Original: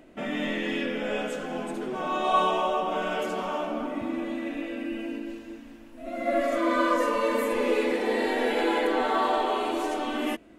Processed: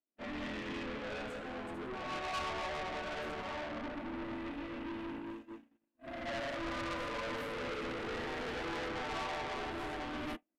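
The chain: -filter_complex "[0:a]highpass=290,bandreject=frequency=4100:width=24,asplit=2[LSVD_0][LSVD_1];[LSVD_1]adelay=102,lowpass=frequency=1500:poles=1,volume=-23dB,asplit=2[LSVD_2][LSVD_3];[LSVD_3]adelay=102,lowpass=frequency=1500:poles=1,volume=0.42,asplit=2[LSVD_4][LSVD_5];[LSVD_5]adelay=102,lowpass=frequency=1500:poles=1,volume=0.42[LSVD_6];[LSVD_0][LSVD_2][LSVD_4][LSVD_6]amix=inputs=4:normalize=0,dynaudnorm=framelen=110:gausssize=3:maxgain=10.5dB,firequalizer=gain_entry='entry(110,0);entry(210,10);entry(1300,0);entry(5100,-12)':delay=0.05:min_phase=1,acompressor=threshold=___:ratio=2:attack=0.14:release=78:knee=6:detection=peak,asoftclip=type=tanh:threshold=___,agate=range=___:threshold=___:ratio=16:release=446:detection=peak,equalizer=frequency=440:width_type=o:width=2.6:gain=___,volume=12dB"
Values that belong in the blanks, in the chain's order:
-21dB, -25.5dB, -56dB, -26dB, -11.5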